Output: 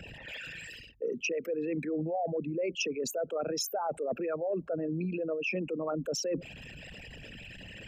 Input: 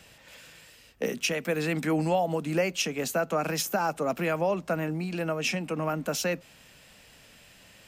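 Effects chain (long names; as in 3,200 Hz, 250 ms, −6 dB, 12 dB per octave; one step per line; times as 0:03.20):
spectral envelope exaggerated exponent 3
reversed playback
downward compressor 6 to 1, threshold −39 dBFS, peak gain reduction 16.5 dB
reversed playback
level +8 dB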